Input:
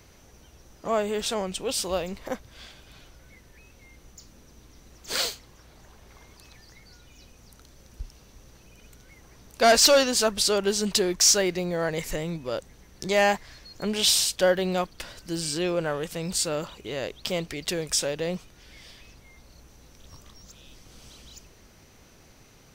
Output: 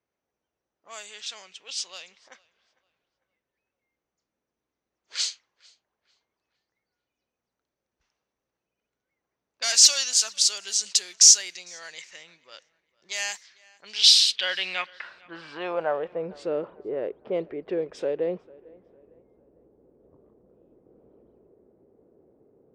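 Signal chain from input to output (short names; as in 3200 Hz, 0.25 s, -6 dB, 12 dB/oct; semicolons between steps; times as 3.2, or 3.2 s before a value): low-pass opened by the level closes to 470 Hz, open at -20.5 dBFS; bell 2300 Hz +7.5 dB 2.3 oct; band-pass sweep 6600 Hz -> 420 Hz, 13.75–16.38; tape echo 0.45 s, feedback 40%, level -23 dB, low-pass 2800 Hz; gain +5 dB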